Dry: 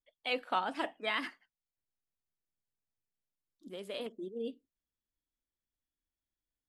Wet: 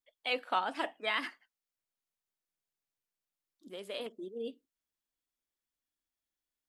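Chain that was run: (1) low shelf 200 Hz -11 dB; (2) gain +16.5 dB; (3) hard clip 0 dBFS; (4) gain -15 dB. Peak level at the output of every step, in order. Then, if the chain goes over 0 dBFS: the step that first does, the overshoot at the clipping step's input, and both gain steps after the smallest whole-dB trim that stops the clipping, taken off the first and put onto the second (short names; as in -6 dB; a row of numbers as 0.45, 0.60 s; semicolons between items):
-19.5, -3.0, -3.0, -18.0 dBFS; no overload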